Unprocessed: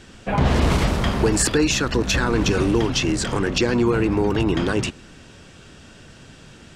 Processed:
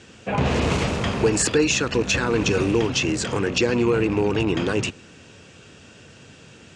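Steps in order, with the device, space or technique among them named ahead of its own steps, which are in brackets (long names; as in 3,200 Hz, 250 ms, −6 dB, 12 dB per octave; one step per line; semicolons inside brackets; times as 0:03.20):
car door speaker with a rattle (loose part that buzzes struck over −20 dBFS, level −26 dBFS; loudspeaker in its box 87–9,400 Hz, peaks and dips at 97 Hz +4 dB, 470 Hz +5 dB, 2,600 Hz +5 dB, 6,700 Hz +4 dB)
level −2.5 dB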